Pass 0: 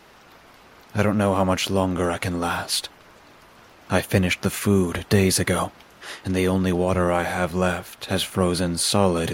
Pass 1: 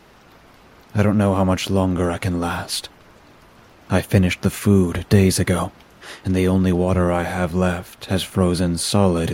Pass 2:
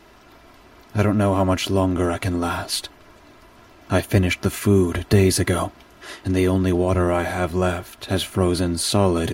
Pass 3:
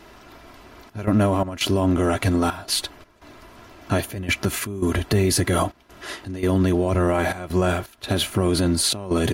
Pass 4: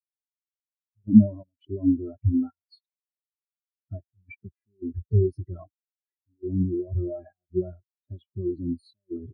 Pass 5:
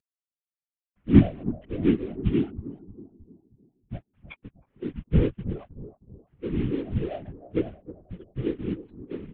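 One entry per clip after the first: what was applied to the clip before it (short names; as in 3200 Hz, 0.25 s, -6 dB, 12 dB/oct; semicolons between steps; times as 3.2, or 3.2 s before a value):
low shelf 350 Hz +7.5 dB; gain -1 dB
comb 3 ms, depth 47%; gain -1 dB
limiter -13.5 dBFS, peak gain reduction 9 dB; step gate "xxxxx.xx." 84 bpm -12 dB; gain +3 dB
spectral expander 4:1; gain +7.5 dB
CVSD 16 kbps; analogue delay 0.314 s, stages 2048, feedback 42%, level -14 dB; whisperiser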